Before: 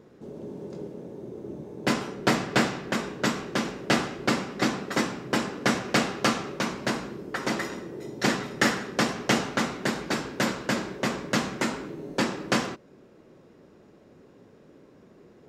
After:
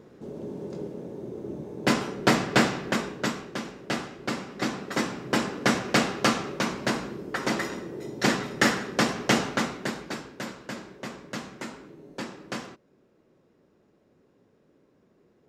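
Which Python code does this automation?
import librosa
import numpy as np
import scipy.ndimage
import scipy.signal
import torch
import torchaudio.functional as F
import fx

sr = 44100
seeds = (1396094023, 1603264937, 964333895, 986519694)

y = fx.gain(x, sr, db=fx.line((2.89, 2.0), (3.6, -6.5), (4.2, -6.5), (5.38, 1.0), (9.48, 1.0), (10.43, -10.0)))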